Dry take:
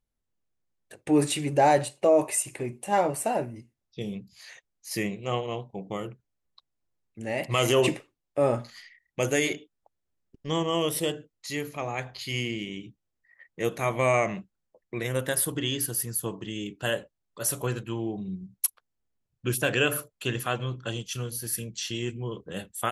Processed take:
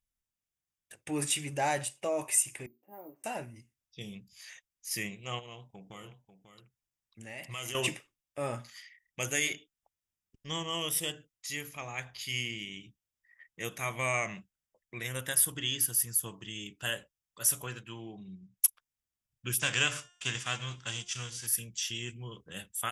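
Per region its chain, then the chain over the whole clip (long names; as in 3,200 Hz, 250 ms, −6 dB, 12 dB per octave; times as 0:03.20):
0:02.66–0:03.24: four-pole ladder band-pass 340 Hz, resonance 55% + bad sample-rate conversion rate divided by 3×, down none, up hold
0:05.39–0:07.75: downward compressor 2.5 to 1, threshold −34 dBFS + single-tap delay 543 ms −11 dB
0:17.64–0:18.57: high-pass filter 150 Hz 6 dB per octave + high-frequency loss of the air 63 metres
0:19.58–0:21.46: spectral envelope flattened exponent 0.6 + Butterworth low-pass 8,100 Hz + hum removal 354.3 Hz, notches 26
whole clip: guitar amp tone stack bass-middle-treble 5-5-5; notch filter 4,200 Hz, Q 5.2; level +7 dB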